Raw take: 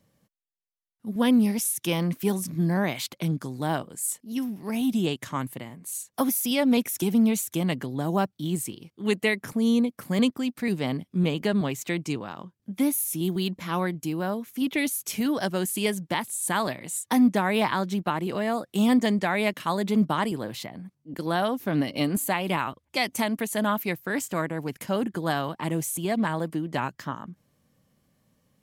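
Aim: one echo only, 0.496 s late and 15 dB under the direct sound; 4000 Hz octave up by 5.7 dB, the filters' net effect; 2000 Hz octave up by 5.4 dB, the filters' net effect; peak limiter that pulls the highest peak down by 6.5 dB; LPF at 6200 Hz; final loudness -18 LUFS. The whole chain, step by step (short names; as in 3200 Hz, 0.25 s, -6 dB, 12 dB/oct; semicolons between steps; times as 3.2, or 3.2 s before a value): LPF 6200 Hz; bell 2000 Hz +5 dB; bell 4000 Hz +6 dB; limiter -14 dBFS; echo 0.496 s -15 dB; gain +8.5 dB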